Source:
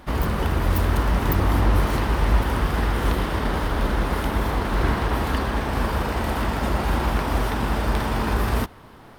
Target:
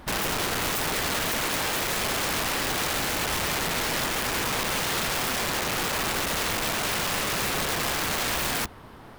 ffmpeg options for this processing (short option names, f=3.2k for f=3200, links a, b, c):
-af "aeval=exprs='(mod(13.3*val(0)+1,2)-1)/13.3':c=same"